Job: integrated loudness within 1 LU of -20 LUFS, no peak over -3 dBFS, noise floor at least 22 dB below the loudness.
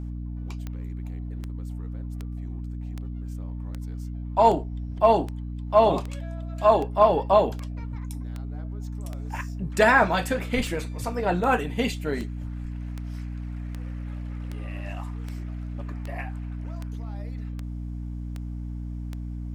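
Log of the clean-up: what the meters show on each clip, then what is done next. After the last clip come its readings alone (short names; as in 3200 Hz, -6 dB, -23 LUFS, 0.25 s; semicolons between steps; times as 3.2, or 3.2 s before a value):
clicks 25; hum 60 Hz; harmonics up to 300 Hz; hum level -30 dBFS; loudness -27.5 LUFS; peak -6.5 dBFS; loudness target -20.0 LUFS
-> de-click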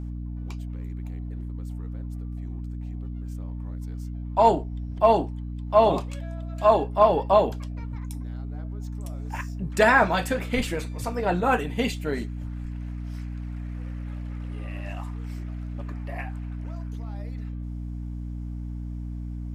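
clicks 0; hum 60 Hz; harmonics up to 300 Hz; hum level -30 dBFS
-> notches 60/120/180/240/300 Hz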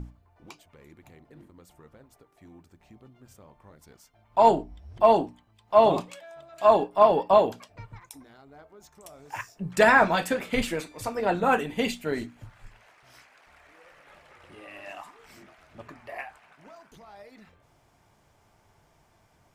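hum none; loudness -23.0 LUFS; peak -6.5 dBFS; loudness target -20.0 LUFS
-> gain +3 dB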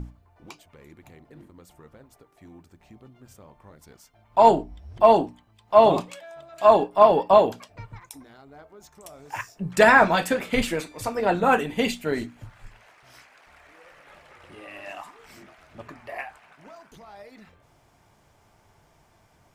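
loudness -20.0 LUFS; peak -3.5 dBFS; noise floor -61 dBFS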